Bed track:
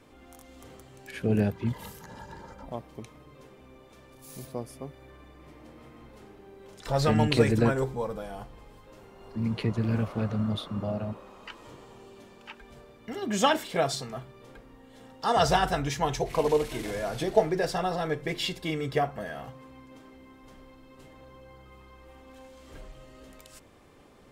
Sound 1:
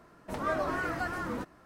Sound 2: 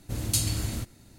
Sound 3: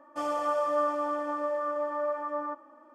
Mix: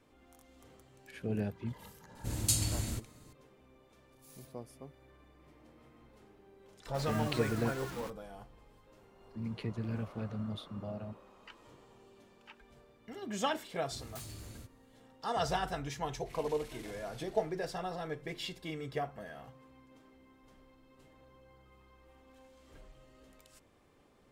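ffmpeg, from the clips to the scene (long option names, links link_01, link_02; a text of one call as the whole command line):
ffmpeg -i bed.wav -i cue0.wav -i cue1.wav -filter_complex "[2:a]asplit=2[link_01][link_02];[0:a]volume=-10dB[link_03];[link_01]equalizer=frequency=7700:width=2.9:gain=4.5[link_04];[1:a]acrusher=bits=5:mix=0:aa=0.000001[link_05];[link_02]aeval=exprs='0.0631*(abs(mod(val(0)/0.0631+3,4)-2)-1)':channel_layout=same[link_06];[link_04]atrim=end=1.18,asetpts=PTS-STARTPTS,volume=-5dB,afade=type=in:duration=0.004:curve=hsin,afade=type=out:start_time=1.176:duration=0.004:curve=hsin,adelay=2150[link_07];[link_05]atrim=end=1.65,asetpts=PTS-STARTPTS,volume=-11dB,afade=type=in:duration=0.004:curve=hsin,afade=type=out:start_time=1.646:duration=0.004:curve=hsin,adelay=293706S[link_08];[link_06]atrim=end=1.18,asetpts=PTS-STARTPTS,volume=-17dB,afade=type=in:duration=0.004:curve=hsin,afade=type=out:start_time=1.176:duration=0.004:curve=hsin,adelay=13820[link_09];[link_03][link_07][link_08][link_09]amix=inputs=4:normalize=0" out.wav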